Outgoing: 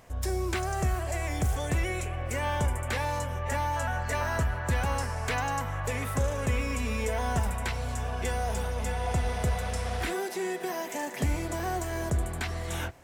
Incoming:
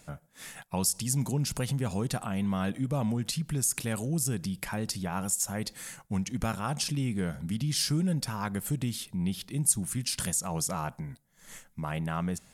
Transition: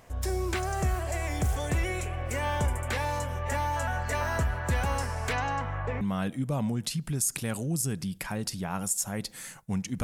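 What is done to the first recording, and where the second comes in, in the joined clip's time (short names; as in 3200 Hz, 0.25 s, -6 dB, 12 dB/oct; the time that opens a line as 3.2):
outgoing
5.32–6.01 LPF 6600 Hz -> 1500 Hz
6.01 switch to incoming from 2.43 s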